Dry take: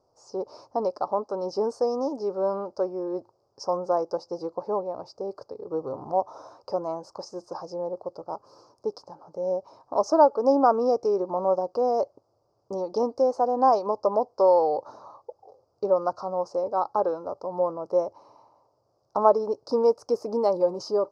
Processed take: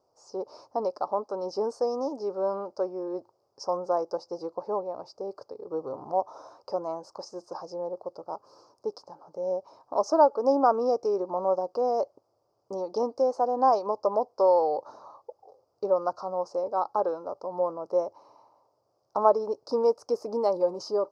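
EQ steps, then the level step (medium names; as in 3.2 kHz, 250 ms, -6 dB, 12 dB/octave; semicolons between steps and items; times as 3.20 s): bass shelf 160 Hz -9 dB; -1.5 dB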